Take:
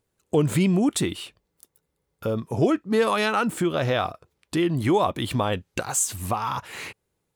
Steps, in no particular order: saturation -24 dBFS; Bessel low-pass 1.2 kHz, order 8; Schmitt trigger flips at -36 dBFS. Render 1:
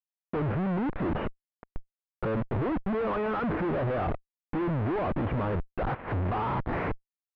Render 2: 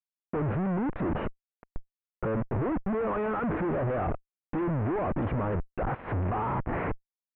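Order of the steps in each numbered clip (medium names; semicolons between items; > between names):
Schmitt trigger > Bessel low-pass > saturation; Schmitt trigger > saturation > Bessel low-pass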